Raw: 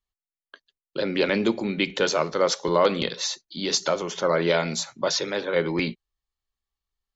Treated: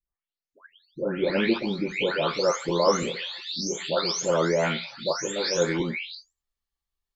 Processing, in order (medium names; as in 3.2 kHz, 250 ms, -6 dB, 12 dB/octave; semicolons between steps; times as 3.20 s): delay that grows with frequency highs late, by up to 560 ms